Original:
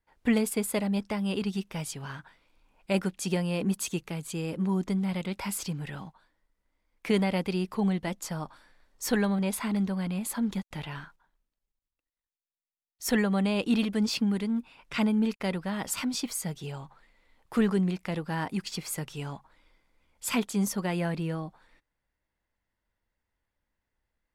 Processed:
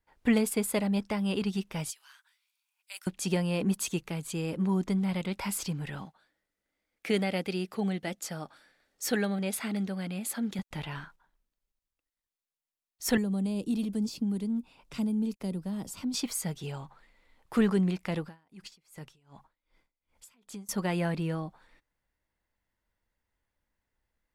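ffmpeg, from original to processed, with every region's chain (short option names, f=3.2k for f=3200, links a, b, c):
-filter_complex "[0:a]asettb=1/sr,asplit=3[a][b][c];[a]atrim=end=1.904[d];[b]atrim=start=1.9:end=3.07,asetpts=PTS-STARTPTS,afade=t=in:d=0.004:c=qsin,afade=t=out:st=1.166:d=0.004:c=qsin,highpass=1.1k,aderivative[e];[c]atrim=start=3.066[f];[d][e]acrossfade=d=0.004:c1=hsin:c2=qsin[g];[g][f]acrossfade=d=0.004:c1=qsin:c2=hsin,asettb=1/sr,asplit=3[h][i][j];[h]atrim=end=6.054[k];[i]atrim=start=6.05:end=10.59,asetpts=PTS-STARTPTS,afade=t=in:d=0.004:c=qsin,afade=t=out:st=4.536:d=0.004:c=qsin,highpass=f=250:p=1,equalizer=f=1k:t=o:w=0.3:g=-12.5[l];[j]atrim=start=10.586[m];[k][l]acrossfade=d=0.004:c1=hsin:c2=qsin[n];[n][m]acrossfade=d=0.004:c1=qsin:c2=hsin,asettb=1/sr,asplit=3[o][p][q];[o]atrim=end=13.174[r];[p]atrim=start=13.17:end=16.14,asetpts=PTS-STARTPTS,afade=t=in:d=0.004:c=qsin,afade=t=out:st=2.966:d=0.004:c=qsin,equalizer=f=1.8k:w=0.88:g=-9.5,acrossover=split=140|370|5700[s][t][u][v];[s]acompressor=threshold=-46dB:ratio=3[w];[t]acompressor=threshold=-29dB:ratio=3[x];[u]acompressor=threshold=-49dB:ratio=3[y];[v]acompressor=threshold=-47dB:ratio=3[z];[w][x][y][z]amix=inputs=4:normalize=0[aa];[q]atrim=start=16.136[ab];[r][aa]acrossfade=d=0.004:c1=hsin:c2=qsin[ac];[ac][ab]acrossfade=d=0.004:c1=qsin:c2=hsin,asettb=1/sr,asplit=3[ad][ae][af];[ad]atrim=end=18.254[ag];[ae]atrim=start=18.25:end=20.69,asetpts=PTS-STARTPTS,afade=t=in:d=0.004:c=qsin,afade=t=out:st=2.436:d=0.004:c=qsin,acompressor=threshold=-39dB:ratio=5:attack=3.2:release=140:knee=1:detection=peak,aeval=exprs='val(0)*pow(10,-28*(0.5-0.5*cos(2*PI*2.6*n/s))/20)':c=same[ah];[af]atrim=start=20.686[ai];[ag][ah]acrossfade=d=0.004:c1=hsin:c2=qsin[aj];[aj][ai]acrossfade=d=0.004:c1=qsin:c2=hsin"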